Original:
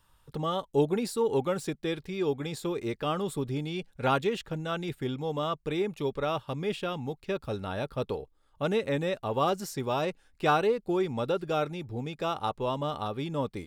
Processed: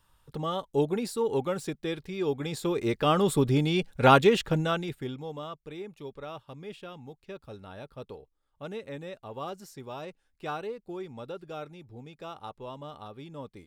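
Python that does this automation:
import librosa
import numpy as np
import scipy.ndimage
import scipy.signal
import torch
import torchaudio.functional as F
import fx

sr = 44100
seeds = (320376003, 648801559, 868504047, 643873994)

y = fx.gain(x, sr, db=fx.line((2.17, -1.0), (3.31, 8.0), (4.6, 8.0), (4.87, -0.5), (5.62, -10.5)))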